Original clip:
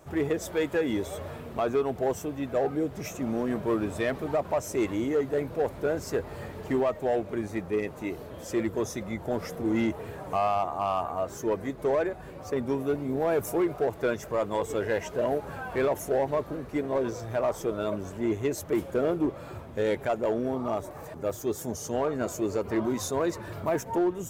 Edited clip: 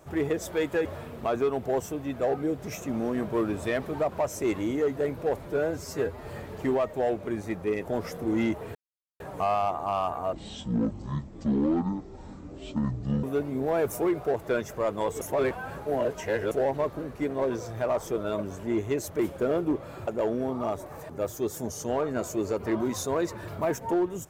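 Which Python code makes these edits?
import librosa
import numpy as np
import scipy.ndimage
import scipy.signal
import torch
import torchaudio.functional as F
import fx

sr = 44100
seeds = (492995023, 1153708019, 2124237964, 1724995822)

y = fx.edit(x, sr, fx.cut(start_s=0.85, length_s=0.33),
    fx.stretch_span(start_s=5.78, length_s=0.54, factor=1.5),
    fx.cut(start_s=7.91, length_s=1.32),
    fx.insert_silence(at_s=10.13, length_s=0.45),
    fx.speed_span(start_s=11.26, length_s=1.51, speed=0.52),
    fx.reverse_span(start_s=14.75, length_s=1.3),
    fx.cut(start_s=19.61, length_s=0.51), tone=tone)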